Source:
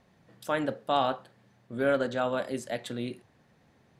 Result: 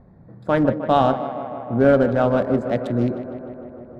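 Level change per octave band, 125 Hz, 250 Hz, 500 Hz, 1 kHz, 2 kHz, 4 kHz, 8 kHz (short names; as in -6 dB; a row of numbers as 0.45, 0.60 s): +17.0 dB, +14.0 dB, +11.0 dB, +9.0 dB, +5.0 dB, +0.5 dB, n/a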